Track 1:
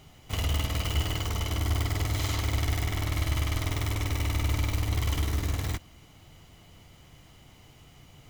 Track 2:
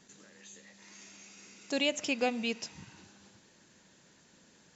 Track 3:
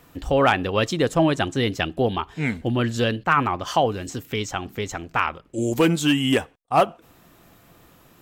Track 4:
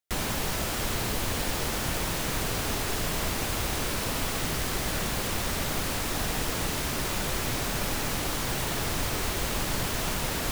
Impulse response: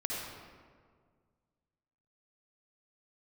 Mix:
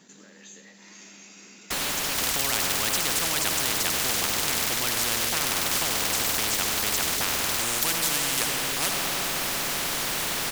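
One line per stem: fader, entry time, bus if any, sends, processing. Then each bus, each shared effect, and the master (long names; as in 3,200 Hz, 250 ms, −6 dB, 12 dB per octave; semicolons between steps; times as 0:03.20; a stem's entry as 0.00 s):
−5.0 dB, 1.85 s, no send, no processing
−14.5 dB, 0.00 s, send −10 dB, floating-point word with a short mantissa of 4 bits
−5.5 dB, 2.05 s, send −3.5 dB, no processing
−13.0 dB, 1.60 s, no send, no processing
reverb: on, RT60 1.8 s, pre-delay 50 ms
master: low shelf with overshoot 130 Hz −10.5 dB, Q 1.5; every bin compressed towards the loudest bin 10 to 1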